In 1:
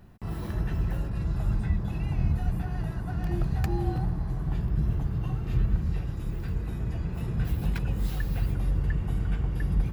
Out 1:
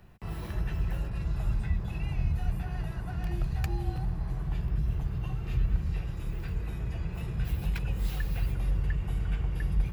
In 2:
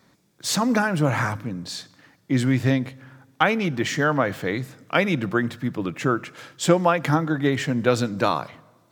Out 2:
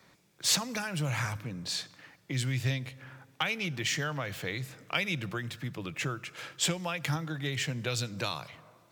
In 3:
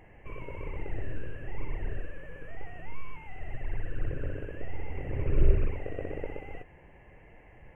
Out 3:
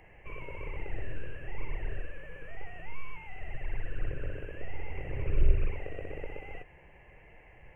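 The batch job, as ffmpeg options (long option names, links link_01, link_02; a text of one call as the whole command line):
ffmpeg -i in.wav -filter_complex "[0:a]acrossover=split=130|3000[link_01][link_02][link_03];[link_02]acompressor=threshold=-35dB:ratio=4[link_04];[link_01][link_04][link_03]amix=inputs=3:normalize=0,equalizer=frequency=100:width_type=o:width=0.67:gain=-3,equalizer=frequency=250:width_type=o:width=0.67:gain=-7,equalizer=frequency=2500:width_type=o:width=0.67:gain=5,volume=-1dB" out.wav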